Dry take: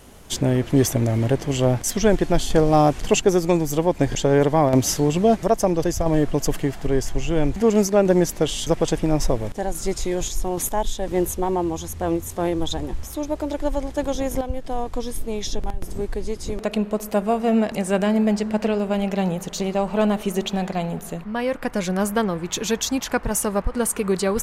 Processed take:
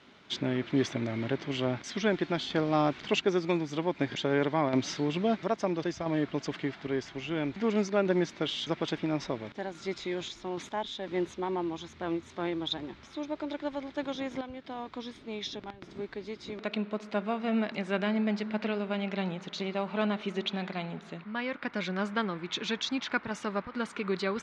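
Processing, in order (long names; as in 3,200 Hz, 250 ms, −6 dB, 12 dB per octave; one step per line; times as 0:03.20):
loudspeaker in its box 190–4,700 Hz, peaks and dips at 490 Hz −7 dB, 740 Hz −5 dB, 1,400 Hz +5 dB, 2,200 Hz +6 dB, 3,700 Hz +6 dB
level −7.5 dB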